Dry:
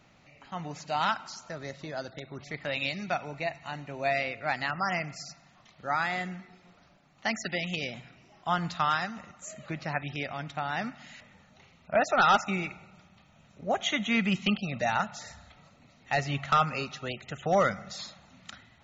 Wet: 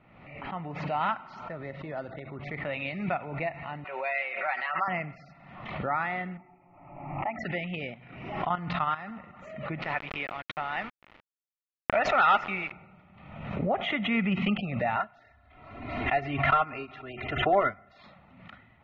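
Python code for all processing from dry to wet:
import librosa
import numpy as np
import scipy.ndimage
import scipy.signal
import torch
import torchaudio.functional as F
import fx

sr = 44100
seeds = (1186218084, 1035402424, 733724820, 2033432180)

y = fx.chain(x, sr, fx.highpass(hz=810.0, slope=12),
    fx.comb(ms=5.3, depth=0.7), at=(3.84, 4.88))
y = fx.chain(y, sr, fx.steep_lowpass(hz=2600.0, slope=72),
    fx.fixed_phaser(hz=310.0, stages=8),
    fx.small_body(hz=(870.0, 1300.0), ring_ms=60, db=9), at=(6.37, 7.39))
y = fx.chain(y, sr, fx.high_shelf(hz=3400.0, db=2.5),
    fx.level_steps(step_db=13), at=(7.94, 9.11))
y = fx.chain(y, sr, fx.tilt_eq(slope=3.5),
    fx.quant_dither(seeds[0], bits=6, dither='none'), at=(9.82, 12.72))
y = fx.chain(y, sr, fx.comb(ms=2.9, depth=0.8),
    fx.upward_expand(threshold_db=-42.0, expansion=1.5), at=(14.96, 18.04))
y = scipy.signal.sosfilt(scipy.signal.butter(4, 2500.0, 'lowpass', fs=sr, output='sos'), y)
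y = fx.notch(y, sr, hz=1600.0, q=7.6)
y = fx.pre_swell(y, sr, db_per_s=53.0)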